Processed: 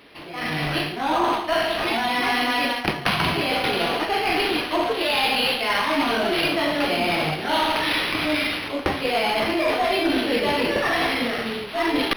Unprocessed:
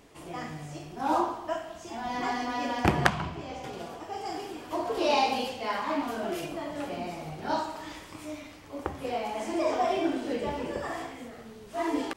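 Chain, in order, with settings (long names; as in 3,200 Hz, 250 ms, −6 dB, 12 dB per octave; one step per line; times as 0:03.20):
meter weighting curve D
reversed playback
downward compressor 10 to 1, threshold −36 dBFS, peak gain reduction 25 dB
reversed playback
tube saturation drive 30 dB, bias 0.4
automatic gain control gain up to 14 dB
dynamic equaliser 4,600 Hz, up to +3 dB, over −44 dBFS, Q 0.91
linearly interpolated sample-rate reduction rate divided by 6×
level +6 dB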